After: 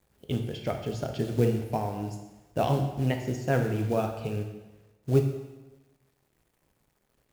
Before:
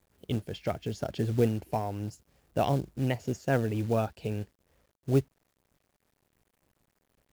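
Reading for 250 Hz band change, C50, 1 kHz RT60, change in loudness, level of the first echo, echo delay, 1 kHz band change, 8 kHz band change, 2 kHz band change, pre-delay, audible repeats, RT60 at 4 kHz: +1.5 dB, 6.5 dB, 1.1 s, +1.5 dB, none, none, +1.5 dB, +1.5 dB, +1.5 dB, 6 ms, none, 1.0 s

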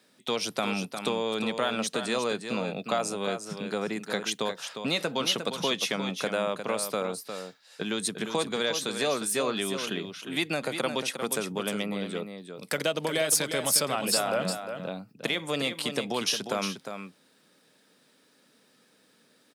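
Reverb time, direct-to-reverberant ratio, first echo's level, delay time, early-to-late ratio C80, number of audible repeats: none, none, -8.0 dB, 0.355 s, none, 1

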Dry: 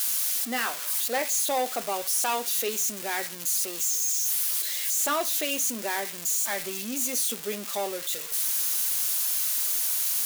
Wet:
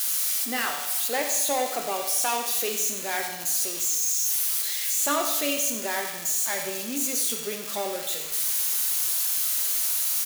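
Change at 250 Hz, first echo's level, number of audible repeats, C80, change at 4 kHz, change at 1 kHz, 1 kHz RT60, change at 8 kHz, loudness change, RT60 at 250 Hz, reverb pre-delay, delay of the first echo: +2.0 dB, -10.5 dB, 1, 6.0 dB, +1.5 dB, +1.0 dB, 1.1 s, +1.5 dB, +1.5 dB, 1.1 s, 7 ms, 92 ms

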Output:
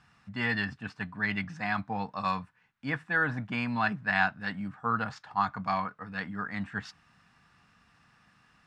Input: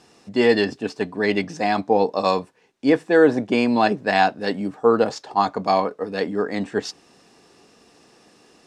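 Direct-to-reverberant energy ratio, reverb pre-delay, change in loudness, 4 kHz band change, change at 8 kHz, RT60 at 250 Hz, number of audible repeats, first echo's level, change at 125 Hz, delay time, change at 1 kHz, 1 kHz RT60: none, none, -10.5 dB, -12.0 dB, n/a, none, none, none, -3.5 dB, none, -9.5 dB, none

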